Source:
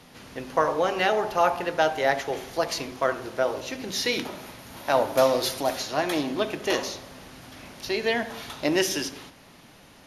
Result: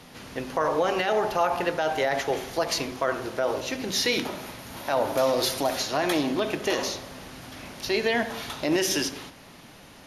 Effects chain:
brickwall limiter −17 dBFS, peak gain reduction 10 dB
level +3 dB

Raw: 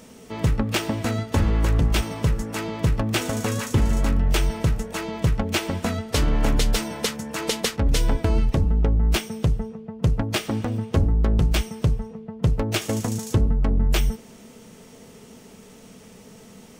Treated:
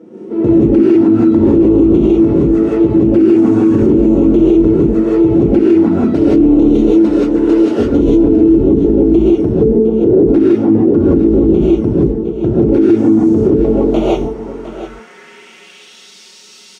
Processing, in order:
0:09.61–0:10.16: parametric band 440 Hz +14 dB 1.7 octaves
flanger swept by the level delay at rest 6.4 ms, full sweep at −17 dBFS
floating-point word with a short mantissa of 4 bits
hollow resonant body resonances 340/1,400 Hz, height 10 dB, ringing for 35 ms
band-pass filter sweep 330 Hz → 4,300 Hz, 0:13.27–0:16.03
single-tap delay 708 ms −13.5 dB
reverb whose tail is shaped and stops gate 200 ms rising, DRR −8 dB
boost into a limiter +16 dB
level −1 dB

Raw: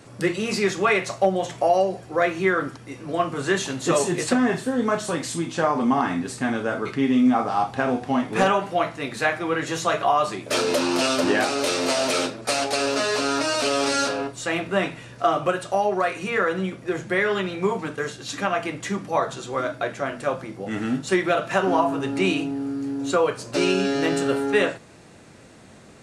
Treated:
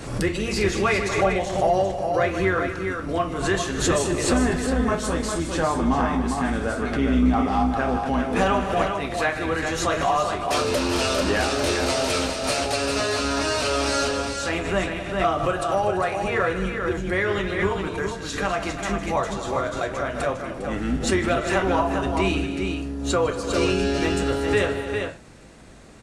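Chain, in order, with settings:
sub-octave generator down 2 octaves, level −3 dB
multi-tap delay 154/238/340/403 ms −13.5/−13.5/−17.5/−6 dB
in parallel at −7.5 dB: soft clipping −15 dBFS, distortion −15 dB
on the sum: background raised ahead of every attack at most 73 dB per second
level −4.5 dB

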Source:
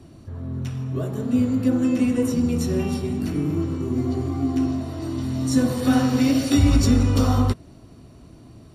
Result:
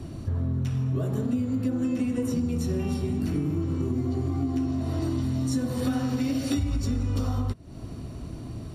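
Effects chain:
low-shelf EQ 160 Hz +6 dB
downward compressor 12 to 1, threshold −29 dBFS, peak gain reduction 22 dB
level +5.5 dB

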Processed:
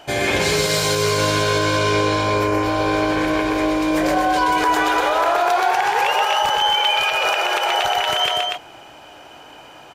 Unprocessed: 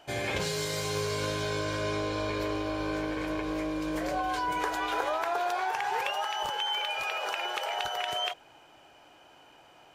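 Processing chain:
0:02.23–0:02.63: parametric band 3,700 Hz −14.5 dB 0.62 octaves
loudspeakers that aren't time-aligned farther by 43 metres −4 dB, 83 metres −5 dB
dynamic equaliser 110 Hz, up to −5 dB, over −46 dBFS, Q 1.5
boost into a limiter +19.5 dB
level −7.5 dB

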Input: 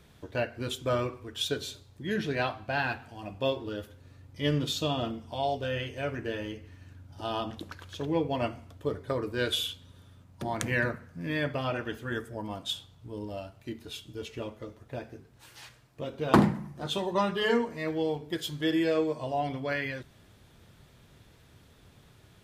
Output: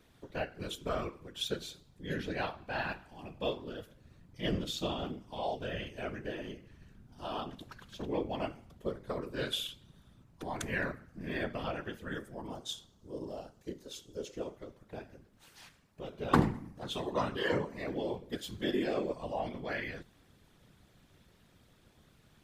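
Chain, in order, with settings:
0:12.50–0:14.56: graphic EQ with 15 bands 100 Hz −4 dB, 400 Hz +6 dB, 2,500 Hz −7 dB, 6,300 Hz +8 dB
random phases in short frames
level −6 dB

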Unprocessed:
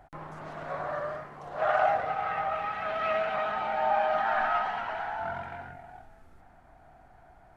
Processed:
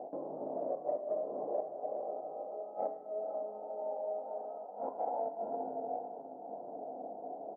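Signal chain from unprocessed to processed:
in parallel at −3.5 dB: hard clipping −21.5 dBFS, distortion −18 dB
on the sum: double-tracking delay 19 ms −8 dB
gate with flip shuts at −18 dBFS, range −27 dB
pitch-shifted copies added −7 semitones −15 dB
Butterworth low-pass 650 Hz 36 dB per octave
feedback delay with all-pass diffusion 469 ms, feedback 43%, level −14 dB
downward compressor 6 to 1, threshold −48 dBFS, peak gain reduction 17.5 dB
high-pass filter 310 Hz 24 dB per octave
on a send at −5 dB: convolution reverb RT60 1.0 s, pre-delay 3 ms
on the sum: level +14 dB

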